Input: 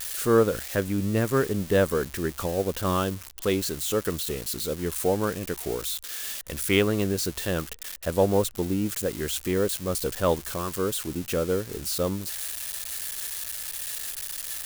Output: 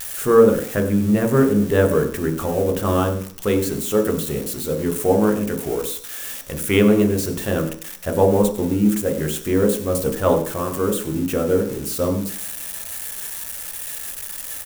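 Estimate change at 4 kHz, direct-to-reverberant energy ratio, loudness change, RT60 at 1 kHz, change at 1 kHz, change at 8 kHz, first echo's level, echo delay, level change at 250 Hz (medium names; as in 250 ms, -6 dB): -0.5 dB, 3.0 dB, +6.5 dB, 0.50 s, +5.5 dB, +2.5 dB, -15.0 dB, 96 ms, +9.0 dB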